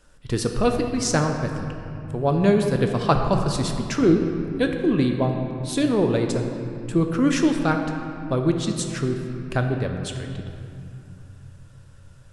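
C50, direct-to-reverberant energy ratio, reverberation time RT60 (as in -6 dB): 5.0 dB, 3.5 dB, 2.7 s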